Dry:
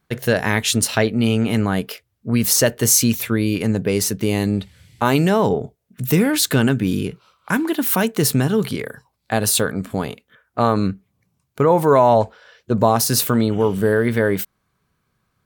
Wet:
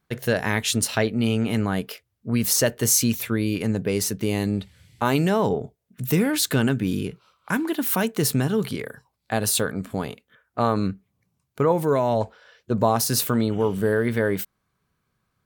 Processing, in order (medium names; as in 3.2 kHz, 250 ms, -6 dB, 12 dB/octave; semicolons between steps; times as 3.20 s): 11.72–12.21 s: peaking EQ 940 Hz -7 dB 1.4 oct; trim -4.5 dB